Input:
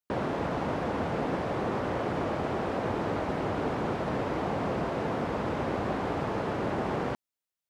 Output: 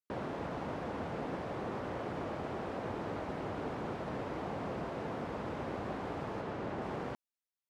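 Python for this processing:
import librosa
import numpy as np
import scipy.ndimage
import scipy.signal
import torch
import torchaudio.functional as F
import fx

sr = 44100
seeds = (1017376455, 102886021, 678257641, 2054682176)

y = fx.high_shelf(x, sr, hz=8900.0, db=-8.0, at=(6.41, 6.82))
y = y * librosa.db_to_amplitude(-8.5)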